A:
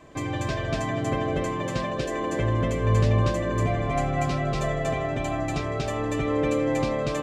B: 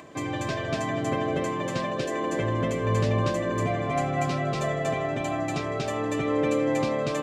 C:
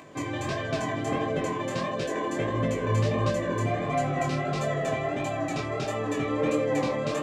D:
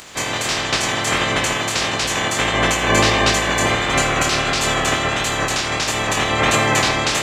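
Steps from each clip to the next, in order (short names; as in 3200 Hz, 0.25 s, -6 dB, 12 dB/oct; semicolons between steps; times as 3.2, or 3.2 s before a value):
HPF 130 Hz 12 dB/oct; upward compressor, threshold -42 dBFS
chorus 1.5 Hz, delay 18.5 ms, depth 7.9 ms; gain +2 dB
spectral limiter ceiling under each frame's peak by 28 dB; reverb RT60 0.60 s, pre-delay 43 ms, DRR 9.5 dB; gain +9 dB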